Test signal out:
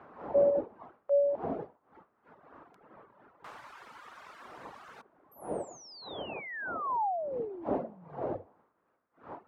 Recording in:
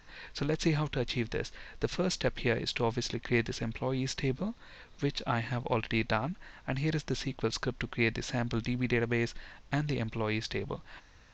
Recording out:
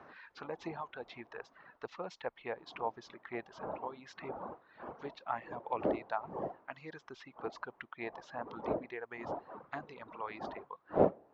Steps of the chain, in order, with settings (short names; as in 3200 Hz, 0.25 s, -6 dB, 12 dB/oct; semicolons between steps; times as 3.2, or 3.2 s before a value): wind noise 370 Hz -31 dBFS; reverb removal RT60 1.7 s; auto-wah 590–1400 Hz, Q 2.1, down, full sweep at -21 dBFS